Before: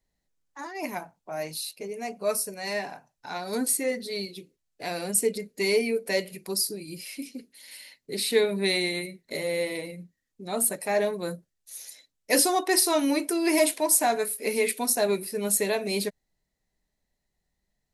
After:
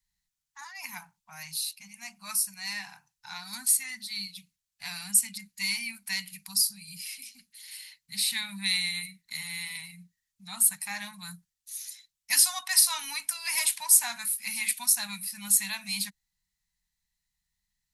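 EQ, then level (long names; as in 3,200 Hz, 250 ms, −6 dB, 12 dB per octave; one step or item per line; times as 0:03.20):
Chebyshev band-stop filter 200–860 Hz, order 3
guitar amp tone stack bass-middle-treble 5-5-5
+8.5 dB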